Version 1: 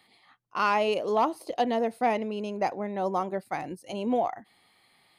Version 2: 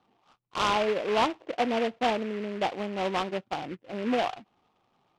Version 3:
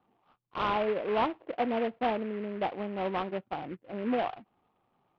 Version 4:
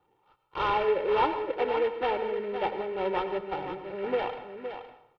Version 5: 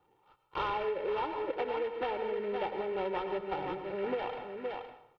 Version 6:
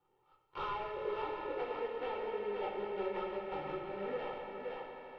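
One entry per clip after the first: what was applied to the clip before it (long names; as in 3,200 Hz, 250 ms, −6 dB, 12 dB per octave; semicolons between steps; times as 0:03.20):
Chebyshev low-pass filter 1,400 Hz, order 6; short delay modulated by noise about 1,800 Hz, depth 0.088 ms
high-frequency loss of the air 370 metres; level −1.5 dB
comb filter 2.2 ms, depth 81%; single-tap delay 515 ms −9 dB; dense smooth reverb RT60 0.68 s, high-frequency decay 0.85×, pre-delay 85 ms, DRR 10 dB
downward compressor 10 to 1, threshold −30 dBFS, peak gain reduction 10.5 dB
tuned comb filter 430 Hz, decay 0.31 s, harmonics odd, mix 70%; on a send: echo that builds up and dies away 82 ms, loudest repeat 5, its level −15 dB; on the sum: rectangular room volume 58 cubic metres, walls mixed, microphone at 0.79 metres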